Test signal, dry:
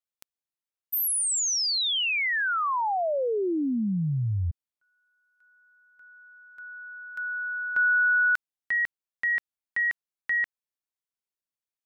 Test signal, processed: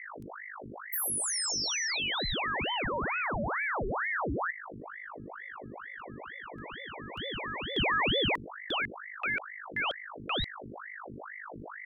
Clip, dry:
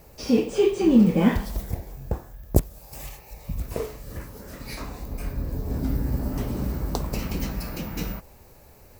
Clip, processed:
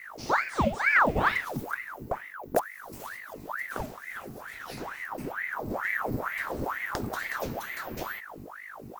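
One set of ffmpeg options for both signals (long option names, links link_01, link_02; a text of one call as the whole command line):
ffmpeg -i in.wav -af "aeval=exprs='val(0)+0.0141*(sin(2*PI*50*n/s)+sin(2*PI*2*50*n/s)/2+sin(2*PI*3*50*n/s)/3+sin(2*PI*4*50*n/s)/4+sin(2*PI*5*50*n/s)/5)':channel_layout=same,aeval=exprs='0.335*(abs(mod(val(0)/0.335+3,4)-2)-1)':channel_layout=same,aeval=exprs='val(0)*sin(2*PI*1100*n/s+1100*0.85/2.2*sin(2*PI*2.2*n/s))':channel_layout=same,volume=-3dB" out.wav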